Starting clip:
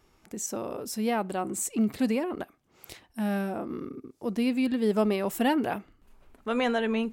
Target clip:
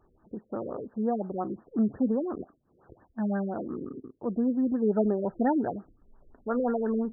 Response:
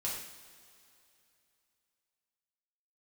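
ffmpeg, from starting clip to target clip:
-filter_complex "[0:a]asettb=1/sr,asplit=3[link_01][link_02][link_03];[link_01]atrim=end=4.834[link_04];[link_02]atrim=start=4.83:end=5.68,asetpts=PTS-STARTPTS,afade=type=in:duration=0.004:curve=qsin,afade=type=out:start_time=0.846:duration=0.004:curve=qsin,asuperstop=centerf=1100:order=4:qfactor=4.4[link_05];[link_03]atrim=start=5.676[link_06];[link_04][link_05]acrossfade=duration=0.004:curve1=hsin:curve2=qsin[link_07];[link_07][link_06]acrossfade=duration=0.004:curve1=qsin:curve2=hsin,afftfilt=real='re*lt(b*sr/1024,540*pow(1900/540,0.5+0.5*sin(2*PI*5.7*pts/sr)))':imag='im*lt(b*sr/1024,540*pow(1900/540,0.5+0.5*sin(2*PI*5.7*pts/sr)))':win_size=1024:overlap=0.75"

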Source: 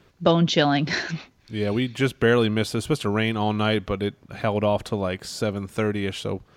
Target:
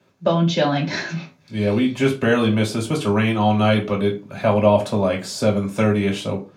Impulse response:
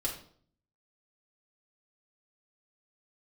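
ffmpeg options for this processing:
-filter_complex "[0:a]highpass=frequency=120:width=0.5412,highpass=frequency=120:width=1.3066,dynaudnorm=framelen=270:gausssize=5:maxgain=8dB[link_01];[1:a]atrim=start_sample=2205,asetrate=83790,aresample=44100[link_02];[link_01][link_02]afir=irnorm=-1:irlink=0"

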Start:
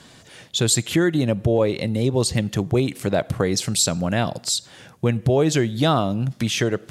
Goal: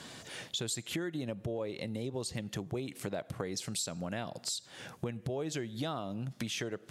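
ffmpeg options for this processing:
ffmpeg -i in.wav -af "lowshelf=frequency=110:gain=-9,acompressor=threshold=-37dB:ratio=4" out.wav

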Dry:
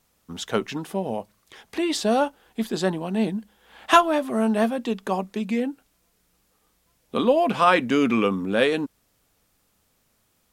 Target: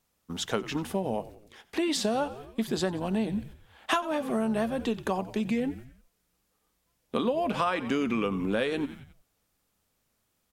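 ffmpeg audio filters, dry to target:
ffmpeg -i in.wav -filter_complex "[0:a]agate=range=-8dB:threshold=-45dB:ratio=16:detection=peak,asplit=5[link_01][link_02][link_03][link_04][link_05];[link_02]adelay=90,afreqshift=-74,volume=-18dB[link_06];[link_03]adelay=180,afreqshift=-148,volume=-23.7dB[link_07];[link_04]adelay=270,afreqshift=-222,volume=-29.4dB[link_08];[link_05]adelay=360,afreqshift=-296,volume=-35dB[link_09];[link_01][link_06][link_07][link_08][link_09]amix=inputs=5:normalize=0,acompressor=threshold=-24dB:ratio=8" out.wav

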